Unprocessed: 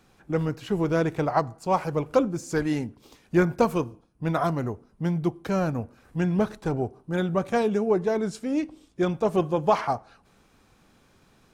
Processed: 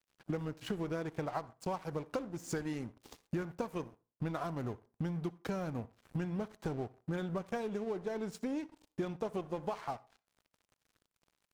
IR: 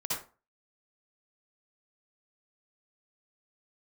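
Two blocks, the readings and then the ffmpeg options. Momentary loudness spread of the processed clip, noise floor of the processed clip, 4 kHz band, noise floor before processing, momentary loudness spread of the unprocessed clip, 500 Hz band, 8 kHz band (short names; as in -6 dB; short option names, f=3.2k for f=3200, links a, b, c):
5 LU, under -85 dBFS, -10.0 dB, -61 dBFS, 7 LU, -14.0 dB, -8.5 dB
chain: -filter_complex "[0:a]acompressor=threshold=-36dB:ratio=16,aeval=exprs='sgn(val(0))*max(abs(val(0))-0.00224,0)':c=same,asplit=2[a][b];[1:a]atrim=start_sample=2205[c];[b][c]afir=irnorm=-1:irlink=0,volume=-25dB[d];[a][d]amix=inputs=2:normalize=0,volume=3dB"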